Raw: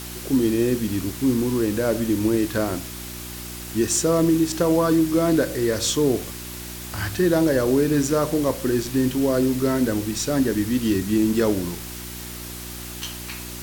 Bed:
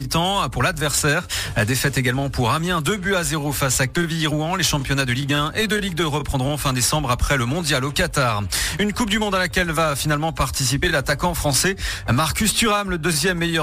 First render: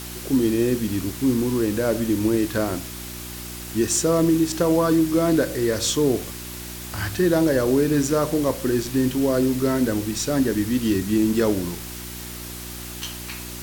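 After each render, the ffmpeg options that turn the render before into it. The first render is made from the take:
-af anull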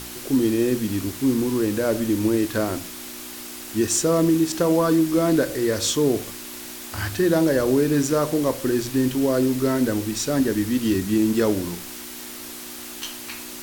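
-af "bandreject=f=60:t=h:w=4,bandreject=f=120:t=h:w=4,bandreject=f=180:t=h:w=4"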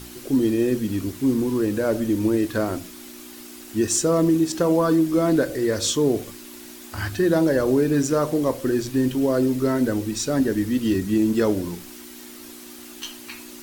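-af "afftdn=nr=7:nf=-37"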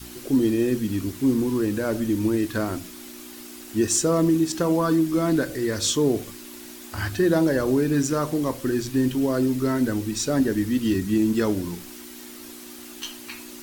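-af "adynamicequalizer=threshold=0.0178:dfrequency=530:dqfactor=1.5:tfrequency=530:tqfactor=1.5:attack=5:release=100:ratio=0.375:range=3.5:mode=cutabove:tftype=bell"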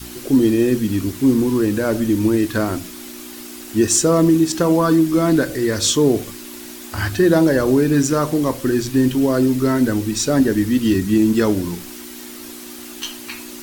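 -af "volume=6dB"

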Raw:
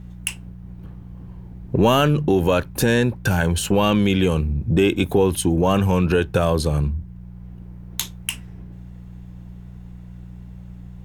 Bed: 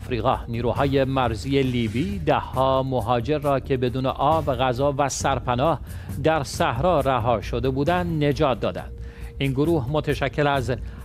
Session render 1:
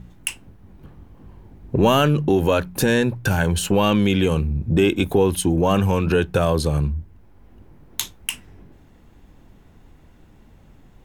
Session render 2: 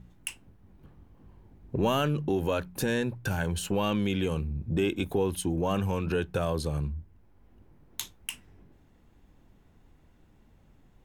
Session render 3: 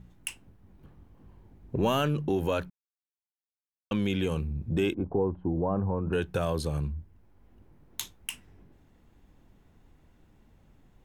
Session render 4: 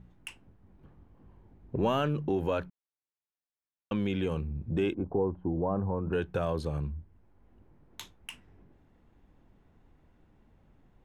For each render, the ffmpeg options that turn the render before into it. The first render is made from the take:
-af "bandreject=f=60:t=h:w=4,bandreject=f=120:t=h:w=4,bandreject=f=180:t=h:w=4"
-af "volume=-10dB"
-filter_complex "[0:a]asettb=1/sr,asplit=3[a][b][c];[a]atrim=end=4.944[d];[b]atrim=start=4.94:end=6.13,asetpts=PTS-STARTPTS,afade=t=in:d=0.004:c=qsin,afade=t=out:st=1.186:d=0.004:c=qsin,lowpass=f=1.1k:w=0.5412,lowpass=f=1.1k:w=1.3066[e];[c]atrim=start=6.126[f];[d][e]acrossfade=d=0.004:c1=hsin:c2=qsin[g];[g][f]acrossfade=d=0.004:c1=qsin:c2=hsin,asplit=3[h][i][j];[h]atrim=end=2.7,asetpts=PTS-STARTPTS,afade=t=out:st=2.696:d=0.004:c=hsin[k];[i]atrim=start=2.7:end=3.91,asetpts=PTS-STARTPTS,volume=0[l];[j]atrim=start=3.91,asetpts=PTS-STARTPTS,afade=t=in:d=0.004:c=hsin[m];[k][l][m]concat=n=3:v=0:a=1"
-af "lowpass=f=1.9k:p=1,lowshelf=f=330:g=-3"

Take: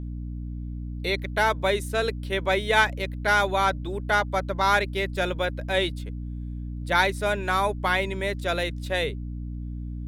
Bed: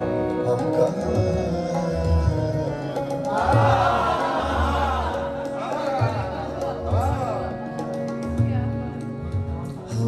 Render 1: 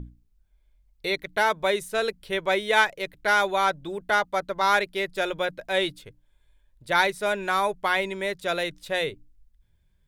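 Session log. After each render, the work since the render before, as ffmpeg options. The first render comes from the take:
-af "bandreject=f=60:t=h:w=6,bandreject=f=120:t=h:w=6,bandreject=f=180:t=h:w=6,bandreject=f=240:t=h:w=6,bandreject=f=300:t=h:w=6"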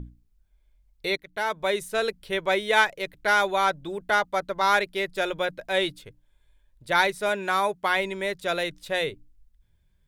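-filter_complex "[0:a]asettb=1/sr,asplit=3[a][b][c];[a]atrim=end=7.294[d];[b]atrim=start=7.29:end=7.9,asetpts=PTS-STARTPTS,afade=t=in:d=0.004:c=qsin,afade=t=out:st=0.606:d=0.004:c=qsin,highpass=91[e];[c]atrim=start=7.896[f];[d][e]acrossfade=d=0.004:c1=hsin:c2=qsin[g];[g][f]acrossfade=d=0.004:c1=qsin:c2=hsin,asplit=2[h][i];[h]atrim=end=1.17,asetpts=PTS-STARTPTS,afade=t=out:st=1.166:d=0.004:c=hsin:silence=0.223872[j];[i]atrim=start=1.17,asetpts=PTS-STARTPTS,afade=t=in:d=0.66:silence=0.223872[k];[j][k]concat=n=2:v=0:a=1"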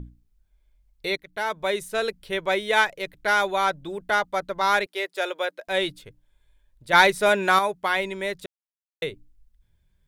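-filter_complex "[0:a]asettb=1/sr,asplit=3[a][b][c];[a]atrim=end=4.864[d];[b]atrim=start=4.86:end=5.68,asetpts=PTS-STARTPTS,afade=t=in:d=0.004:c=qsin,afade=t=out:st=0.816:d=0.004:c=qsin,highpass=f=370:w=0.5412,highpass=f=370:w=1.3066[e];[c]atrim=start=5.676[f];[d][e]acrossfade=d=0.004:c1=hsin:c2=qsin[g];[g][f]acrossfade=d=0.004:c1=qsin:c2=hsin,asettb=1/sr,asplit=3[h][i][j];[h]atrim=end=6.934[k];[i]atrim=start=6.93:end=7.59,asetpts=PTS-STARTPTS,afade=t=in:d=0.004:c=qsin,afade=t=out:st=0.656:d=0.004:c=qsin,acontrast=61[l];[j]atrim=start=7.586[m];[k][l]acrossfade=d=0.004:c1=hsin:c2=qsin[n];[n][m]acrossfade=d=0.004:c1=qsin:c2=hsin,asplit=3[o][p][q];[o]atrim=end=8.46,asetpts=PTS-STARTPTS,afade=t=out:st=8.456:d=0.004:c=hsin[r];[p]atrim=start=8.46:end=9.02,asetpts=PTS-STARTPTS,volume=0[s];[q]atrim=start=9.02,asetpts=PTS-STARTPTS,afade=t=in:d=0.004:c=hsin[t];[r][s][t]concat=n=3:v=0:a=1"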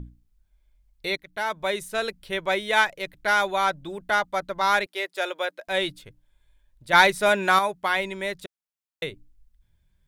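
-af "equalizer=f=440:t=o:w=0.43:g=-4.5"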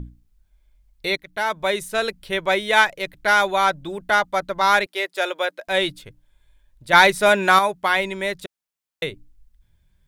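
-af "volume=4.5dB,alimiter=limit=-2dB:level=0:latency=1"

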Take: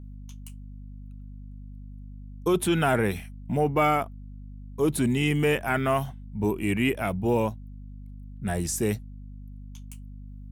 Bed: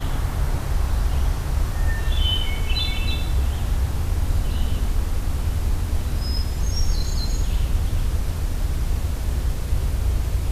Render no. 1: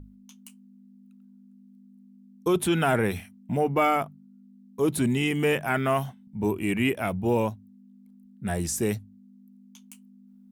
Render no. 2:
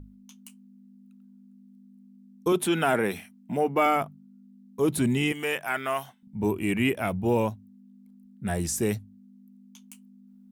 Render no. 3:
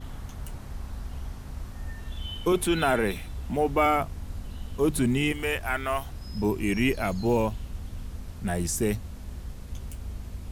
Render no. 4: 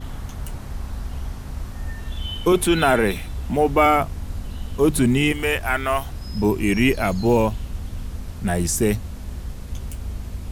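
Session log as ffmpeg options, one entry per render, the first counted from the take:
-af "bandreject=f=50:t=h:w=6,bandreject=f=100:t=h:w=6,bandreject=f=150:t=h:w=6"
-filter_complex "[0:a]asettb=1/sr,asplit=3[a][b][c];[a]atrim=end=2.524[d];[b]atrim=start=2.52:end=3.86,asetpts=PTS-STARTPTS,afade=t=in:d=0.004:c=qsin,afade=t=out:st=1.336:d=0.004:c=qsin,highpass=200[e];[c]atrim=start=3.856[f];[d][e]acrossfade=d=0.004:c1=hsin:c2=qsin[g];[g][f]acrossfade=d=0.004:c1=qsin:c2=hsin,asettb=1/sr,asplit=3[h][i][j];[h]atrim=end=5.324[k];[i]atrim=start=5.32:end=6.23,asetpts=PTS-STARTPTS,afade=t=in:d=0.004:c=qsin,afade=t=out:st=0.906:d=0.004:c=qsin,highpass=f=900:p=1[l];[j]atrim=start=6.226[m];[k][l]acrossfade=d=0.004:c1=hsin:c2=qsin[n];[n][m]acrossfade=d=0.004:c1=qsin:c2=hsin"
-filter_complex "[1:a]volume=-15dB[a];[0:a][a]amix=inputs=2:normalize=0"
-af "volume=6.5dB"

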